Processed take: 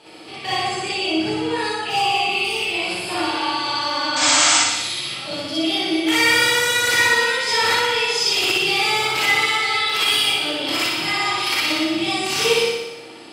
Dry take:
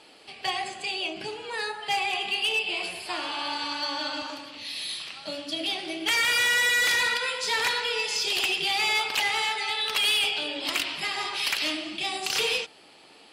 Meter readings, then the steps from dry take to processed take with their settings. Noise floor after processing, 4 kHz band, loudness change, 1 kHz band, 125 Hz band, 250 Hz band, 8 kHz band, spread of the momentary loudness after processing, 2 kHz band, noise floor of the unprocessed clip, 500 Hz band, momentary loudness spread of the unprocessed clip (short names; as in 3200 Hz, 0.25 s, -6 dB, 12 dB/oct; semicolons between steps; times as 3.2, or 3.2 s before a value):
-36 dBFS, +7.0 dB, +7.5 dB, +9.5 dB, n/a, +15.0 dB, +11.5 dB, 8 LU, +7.0 dB, -53 dBFS, +11.5 dB, 12 LU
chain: in parallel at +1.5 dB: limiter -28 dBFS, peak gain reduction 8 dB; on the sum: spectral repair 1.88–2.65, 1200–4100 Hz after; HPF 83 Hz; low shelf 400 Hz +8 dB; painted sound noise, 4.16–4.58, 680–8400 Hz -18 dBFS; on a send: flutter echo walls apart 10.3 m, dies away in 1 s; on the sum: non-linear reverb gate 80 ms rising, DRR -6 dB; gain -6 dB